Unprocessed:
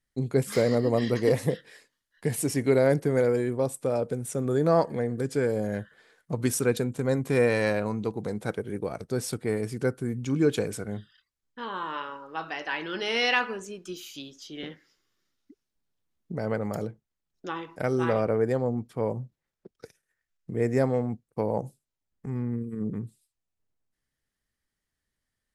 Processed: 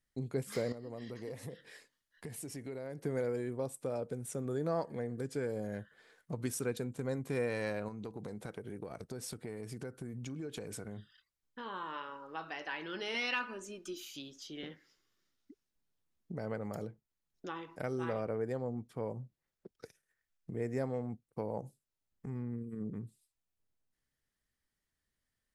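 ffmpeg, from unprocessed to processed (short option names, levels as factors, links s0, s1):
-filter_complex "[0:a]asettb=1/sr,asplit=3[s0][s1][s2];[s0]atrim=end=0.724[s3];[s1]atrim=start=0.72:end=3.04,asetpts=PTS-STARTPTS,afade=t=in:d=0.004:c=qsin,afade=t=out:st=2.316:d=0.004:c=qsin,acompressor=threshold=0.0112:ratio=2.5:attack=3.2:release=140:knee=1:detection=peak[s4];[s2]atrim=start=3.036[s5];[s3][s4]acrossfade=d=0.004:c1=hsin:c2=qsin[s6];[s6][s5]acrossfade=d=0.004:c1=qsin:c2=hsin,asettb=1/sr,asplit=3[s7][s8][s9];[s7]atrim=end=7.884[s10];[s8]atrim=start=7.88:end=11.66,asetpts=PTS-STARTPTS,afade=t=in:d=0.004:c=qsin,afade=t=out:st=3.776:d=0.004:c=qsin,acompressor=threshold=0.0282:ratio=6:attack=3.2:release=140:knee=1:detection=peak[s11];[s9]atrim=start=11.656[s12];[s10][s11]acrossfade=d=0.004:c1=hsin:c2=qsin[s13];[s13][s12]acrossfade=d=0.004:c1=qsin:c2=hsin,asettb=1/sr,asplit=3[s14][s15][s16];[s14]atrim=end=13.144[s17];[s15]atrim=start=13.14:end=14.05,asetpts=PTS-STARTPTS,afade=t=in:d=0.004:c=qsin,afade=t=out:st=0.906:d=0.004:c=qsin,aecho=1:1:3.3:0.65,atrim=end_sample=40131[s18];[s16]atrim=start=14.046[s19];[s17][s18]acrossfade=d=0.004:c1=hsin:c2=qsin[s20];[s20][s19]acrossfade=d=0.004:c1=qsin:c2=hsin,acompressor=threshold=0.00631:ratio=1.5,volume=0.708"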